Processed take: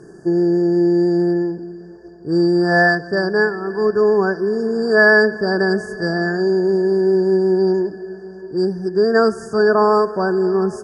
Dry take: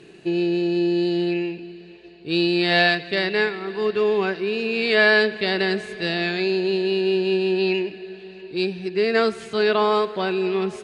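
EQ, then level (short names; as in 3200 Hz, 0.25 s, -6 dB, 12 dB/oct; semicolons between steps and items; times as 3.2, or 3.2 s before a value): brick-wall FIR band-stop 1800–4600 Hz; low shelf 160 Hz +4.5 dB; +5.0 dB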